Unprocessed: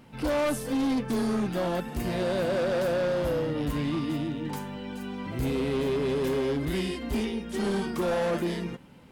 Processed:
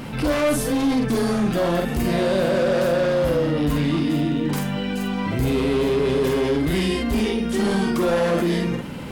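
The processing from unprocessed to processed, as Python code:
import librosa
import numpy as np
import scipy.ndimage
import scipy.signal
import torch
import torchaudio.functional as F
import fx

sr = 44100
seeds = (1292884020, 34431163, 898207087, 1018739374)

y = fx.notch(x, sr, hz=880.0, q=26.0)
y = fx.doubler(y, sr, ms=47.0, db=-5.0)
y = fx.env_flatten(y, sr, amount_pct=50)
y = y * librosa.db_to_amplitude(4.0)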